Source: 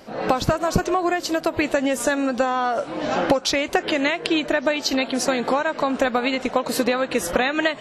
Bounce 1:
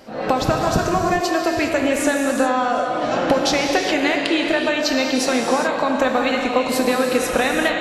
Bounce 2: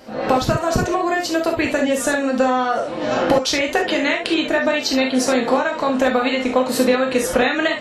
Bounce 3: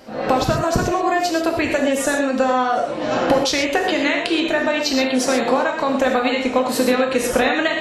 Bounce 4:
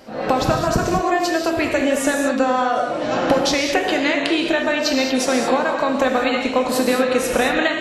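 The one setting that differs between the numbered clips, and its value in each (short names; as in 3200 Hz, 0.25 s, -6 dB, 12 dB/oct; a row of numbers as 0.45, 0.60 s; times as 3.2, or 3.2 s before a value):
non-linear reverb, gate: 440, 90, 150, 250 ms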